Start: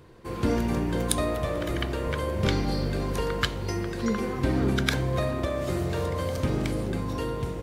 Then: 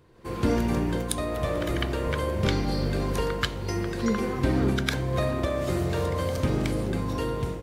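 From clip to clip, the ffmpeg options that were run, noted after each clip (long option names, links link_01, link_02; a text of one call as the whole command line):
ffmpeg -i in.wav -af "dynaudnorm=framelen=130:gausssize=3:maxgain=8.5dB,volume=-7dB" out.wav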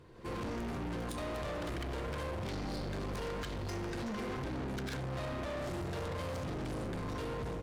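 ffmpeg -i in.wav -af "highshelf=frequency=12000:gain=-11,alimiter=limit=-21dB:level=0:latency=1:release=76,asoftclip=type=tanh:threshold=-37.5dB,volume=1dB" out.wav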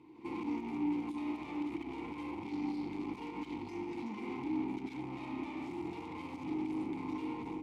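ffmpeg -i in.wav -filter_complex "[0:a]crystalizer=i=2:c=0,alimiter=level_in=9dB:limit=-24dB:level=0:latency=1:release=64,volume=-9dB,asplit=3[link_01][link_02][link_03];[link_01]bandpass=frequency=300:width_type=q:width=8,volume=0dB[link_04];[link_02]bandpass=frequency=870:width_type=q:width=8,volume=-6dB[link_05];[link_03]bandpass=frequency=2240:width_type=q:width=8,volume=-9dB[link_06];[link_04][link_05][link_06]amix=inputs=3:normalize=0,volume=11.5dB" out.wav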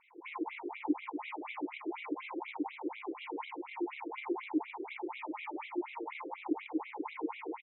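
ffmpeg -i in.wav -af "aecho=1:1:566:0.316,afftfilt=real='re*between(b*sr/1024,410*pow(2900/410,0.5+0.5*sin(2*PI*4.1*pts/sr))/1.41,410*pow(2900/410,0.5+0.5*sin(2*PI*4.1*pts/sr))*1.41)':imag='im*between(b*sr/1024,410*pow(2900/410,0.5+0.5*sin(2*PI*4.1*pts/sr))/1.41,410*pow(2900/410,0.5+0.5*sin(2*PI*4.1*pts/sr))*1.41)':win_size=1024:overlap=0.75,volume=10dB" out.wav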